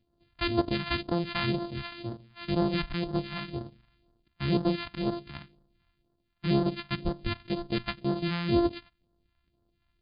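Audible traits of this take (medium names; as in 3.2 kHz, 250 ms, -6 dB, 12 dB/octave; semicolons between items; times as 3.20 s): a buzz of ramps at a fixed pitch in blocks of 128 samples; phasing stages 2, 2 Hz, lowest notch 390–2300 Hz; MP3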